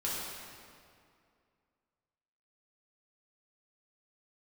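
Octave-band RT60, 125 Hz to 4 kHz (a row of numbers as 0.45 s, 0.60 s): 2.4 s, 2.5 s, 2.4 s, 2.3 s, 2.0 s, 1.7 s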